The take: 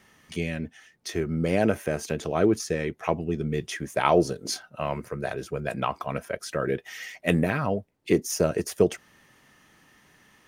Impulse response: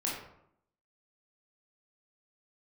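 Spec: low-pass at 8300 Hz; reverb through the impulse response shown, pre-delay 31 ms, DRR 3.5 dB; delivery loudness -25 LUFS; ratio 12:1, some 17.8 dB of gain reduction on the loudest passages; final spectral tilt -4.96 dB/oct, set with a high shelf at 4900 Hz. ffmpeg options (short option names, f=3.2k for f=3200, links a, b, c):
-filter_complex "[0:a]lowpass=8.3k,highshelf=f=4.9k:g=-4,acompressor=threshold=-33dB:ratio=12,asplit=2[a][b];[1:a]atrim=start_sample=2205,adelay=31[c];[b][c]afir=irnorm=-1:irlink=0,volume=-8.5dB[d];[a][d]amix=inputs=2:normalize=0,volume=12.5dB"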